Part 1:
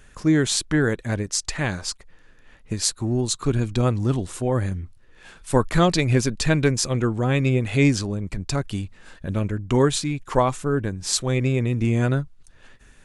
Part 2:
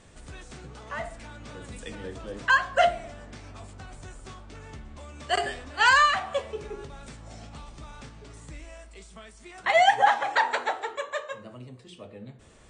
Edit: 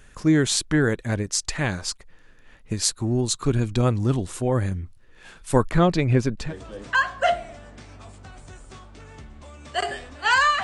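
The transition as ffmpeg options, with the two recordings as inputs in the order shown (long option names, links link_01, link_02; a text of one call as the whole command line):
ffmpeg -i cue0.wav -i cue1.wav -filter_complex "[0:a]asettb=1/sr,asplit=3[link_01][link_02][link_03];[link_01]atrim=end=5.714[link_04];[link_02]atrim=start=5.71:end=6.54,asetpts=PTS-STARTPTS,afade=type=in:duration=0.004:curve=qsin,afade=type=out:start_time=0.826:duration=0.004:curve=qsin,lowpass=frequency=1800:poles=1[link_05];[link_03]atrim=start=6.536[link_06];[link_04][link_05]acrossfade=duration=0.004:curve1=hsin:curve2=qsin[link_07];[link_07][link_06]acrossfade=duration=0.004:curve1=qsin:curve2=hsin,apad=whole_dur=10.63,atrim=end=10.63,atrim=end=6.54,asetpts=PTS-STARTPTS[link_08];[1:a]atrim=start=1.93:end=6.18,asetpts=PTS-STARTPTS[link_09];[link_08][link_09]acrossfade=duration=0.16:curve1=tri:curve2=tri" out.wav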